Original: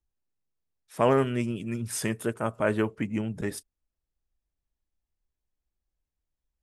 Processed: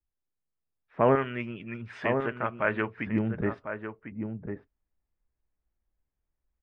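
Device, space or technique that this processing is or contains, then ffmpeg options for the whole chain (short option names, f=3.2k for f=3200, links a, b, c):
action camera in a waterproof case: -filter_complex "[0:a]asettb=1/sr,asplit=3[a][b][c];[a]atrim=end=1.154[d];[b]atrim=start=1.15:end=3.07,asetpts=PTS-STARTPTS,afade=t=in:d=0.004:c=qsin,afade=t=out:st=1.916:d=0.004:c=qsin,tiltshelf=f=1.2k:g=-9.5[e];[c]atrim=start=3.066[f];[d][e]acrossfade=d=0.004:c1=hsin:c2=qsin[g];[g][f]acrossfade=d=0.004:c1=qsin:c2=hsin,lowpass=f=2.2k:w=0.5412,lowpass=f=2.2k:w=1.3066,asplit=2[h][i];[i]adelay=1050,volume=-7dB,highshelf=f=4k:g=-23.6[j];[h][j]amix=inputs=2:normalize=0,dynaudnorm=f=350:g=5:m=7dB,volume=-4.5dB" -ar 48000 -c:a aac -b:a 64k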